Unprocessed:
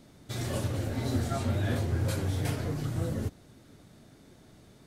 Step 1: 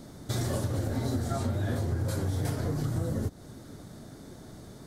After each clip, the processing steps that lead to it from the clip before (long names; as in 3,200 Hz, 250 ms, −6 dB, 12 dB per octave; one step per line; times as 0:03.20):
parametric band 2,600 Hz −10 dB 0.71 octaves
downward compressor, threshold −36 dBFS, peak gain reduction 11.5 dB
level +9 dB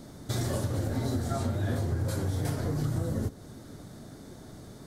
convolution reverb RT60 0.70 s, pre-delay 41 ms, DRR 16 dB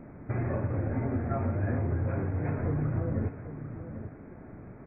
linear-phase brick-wall low-pass 2,600 Hz
on a send: single-tap delay 795 ms −11 dB